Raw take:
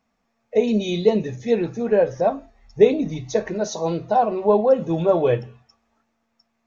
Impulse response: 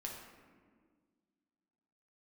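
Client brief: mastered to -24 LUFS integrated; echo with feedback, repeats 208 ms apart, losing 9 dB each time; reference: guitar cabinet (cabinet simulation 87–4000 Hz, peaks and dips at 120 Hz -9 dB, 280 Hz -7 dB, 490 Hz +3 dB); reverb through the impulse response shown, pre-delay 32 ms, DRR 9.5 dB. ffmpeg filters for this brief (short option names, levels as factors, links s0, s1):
-filter_complex "[0:a]aecho=1:1:208|416|624|832:0.355|0.124|0.0435|0.0152,asplit=2[s0][s1];[1:a]atrim=start_sample=2205,adelay=32[s2];[s1][s2]afir=irnorm=-1:irlink=0,volume=0.398[s3];[s0][s3]amix=inputs=2:normalize=0,highpass=87,equalizer=f=120:t=q:w=4:g=-9,equalizer=f=280:t=q:w=4:g=-7,equalizer=f=490:t=q:w=4:g=3,lowpass=f=4000:w=0.5412,lowpass=f=4000:w=1.3066,volume=0.596"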